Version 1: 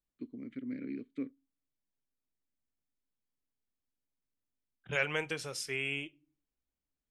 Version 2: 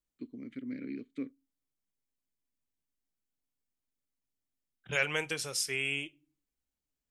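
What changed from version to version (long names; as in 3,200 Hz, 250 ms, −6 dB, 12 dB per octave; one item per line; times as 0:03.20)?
master: add high-shelf EQ 4,200 Hz +10.5 dB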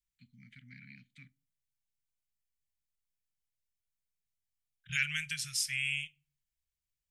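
first voice: send +11.5 dB
master: add inverse Chebyshev band-stop filter 310–890 Hz, stop band 50 dB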